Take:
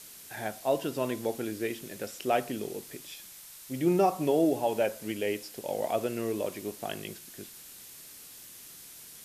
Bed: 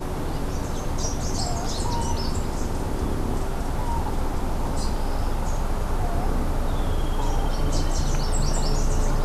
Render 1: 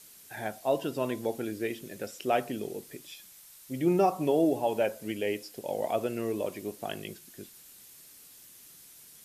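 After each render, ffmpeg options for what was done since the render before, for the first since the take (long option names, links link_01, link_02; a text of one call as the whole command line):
ffmpeg -i in.wav -af "afftdn=noise_reduction=6:noise_floor=-49" out.wav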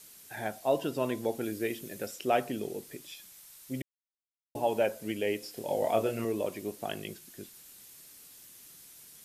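ffmpeg -i in.wav -filter_complex "[0:a]asettb=1/sr,asplit=3[link_01][link_02][link_03];[link_01]atrim=end=1.414[link_04];[link_02]atrim=start=1.41:end=2.16,asetpts=PTS-STARTPTS,afade=type=in:duration=0.004:curve=qsin,afade=type=out:start_time=0.746:duration=0.004:curve=qsin,highshelf=frequency=9500:gain=6.5[link_05];[link_03]atrim=start=2.156[link_06];[link_04][link_05]acrossfade=duration=0.004:curve1=hsin:curve2=qsin[link_07];[link_07][link_06]acrossfade=duration=0.004:curve1=qsin:curve2=hsin,asettb=1/sr,asplit=3[link_08][link_09][link_10];[link_08]atrim=end=5.404[link_11];[link_09]atrim=start=5.4:end=6.25,asetpts=PTS-STARTPTS,afade=type=in:duration=0.004:curve=qsin,afade=type=out:start_time=0.846:duration=0.004:curve=qsin,asplit=2[link_12][link_13];[link_13]adelay=27,volume=-3dB[link_14];[link_12][link_14]amix=inputs=2:normalize=0,atrim=end_sample=37485[link_15];[link_10]atrim=start=6.246[link_16];[link_11][link_15]acrossfade=duration=0.004:curve1=hsin:curve2=qsin[link_17];[link_17][link_16]acrossfade=duration=0.004:curve1=qsin:curve2=hsin,asplit=3[link_18][link_19][link_20];[link_18]atrim=end=3.82,asetpts=PTS-STARTPTS,afade=type=out:start_time=3.816:duration=0.004:curve=hsin[link_21];[link_19]atrim=start=3.82:end=4.55,asetpts=PTS-STARTPTS,volume=0[link_22];[link_20]atrim=start=4.55,asetpts=PTS-STARTPTS,afade=type=in:duration=0.004:curve=hsin[link_23];[link_21][link_22][link_23]concat=n=3:v=0:a=1" out.wav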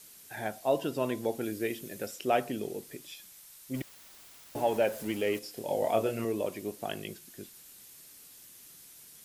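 ffmpeg -i in.wav -filter_complex "[0:a]asettb=1/sr,asplit=3[link_01][link_02][link_03];[link_01]atrim=end=3.744[link_04];[link_02]atrim=start=3.74:end=5.39,asetpts=PTS-STARTPTS,afade=type=in:duration=0.004:curve=qsin,afade=type=out:start_time=1.646:duration=0.004:curve=qsin,aeval=exprs='val(0)+0.5*0.00841*sgn(val(0))':channel_layout=same[link_05];[link_03]atrim=start=5.386[link_06];[link_04][link_05]acrossfade=duration=0.004:curve1=hsin:curve2=qsin[link_07];[link_07][link_06]acrossfade=duration=0.004:curve1=qsin:curve2=hsin" out.wav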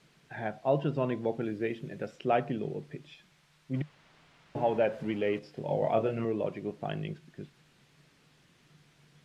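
ffmpeg -i in.wav -af "lowpass=2600,equalizer=frequency=150:width_type=o:width=0.37:gain=14" out.wav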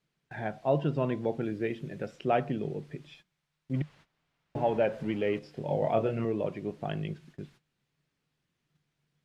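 ffmpeg -i in.wav -af "agate=range=-18dB:threshold=-55dB:ratio=16:detection=peak,lowshelf=frequency=120:gain=5.5" out.wav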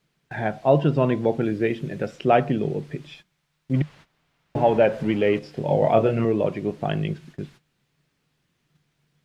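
ffmpeg -i in.wav -af "volume=9dB" out.wav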